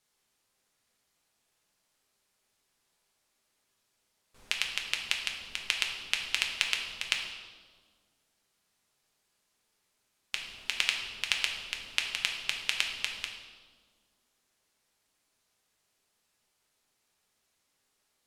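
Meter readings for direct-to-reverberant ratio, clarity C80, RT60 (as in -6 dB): 0.5 dB, 6.5 dB, 1.7 s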